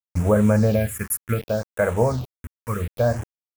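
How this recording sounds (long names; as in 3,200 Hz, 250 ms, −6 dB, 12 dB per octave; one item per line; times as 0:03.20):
a quantiser's noise floor 6 bits, dither none
phaser sweep stages 4, 0.67 Hz, lowest notch 580–4,700 Hz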